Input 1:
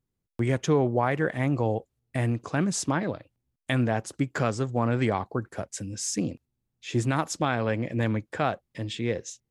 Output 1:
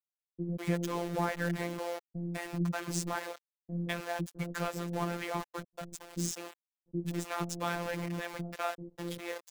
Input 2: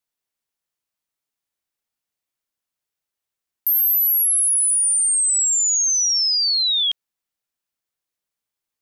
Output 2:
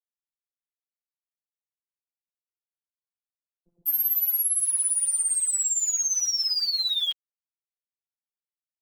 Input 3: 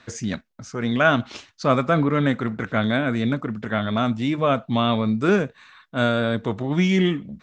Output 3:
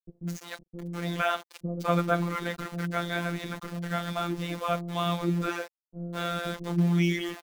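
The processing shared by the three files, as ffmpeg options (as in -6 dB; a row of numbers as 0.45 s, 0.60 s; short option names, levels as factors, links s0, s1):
-filter_complex "[0:a]aeval=exprs='val(0)*gte(abs(val(0)),0.0299)':c=same,acrossover=split=400[s0][s1];[s1]adelay=200[s2];[s0][s2]amix=inputs=2:normalize=0,afftfilt=real='hypot(re,im)*cos(PI*b)':imag='0':win_size=1024:overlap=0.75,volume=0.708"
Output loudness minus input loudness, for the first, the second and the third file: -8.5 LU, -7.0 LU, -8.0 LU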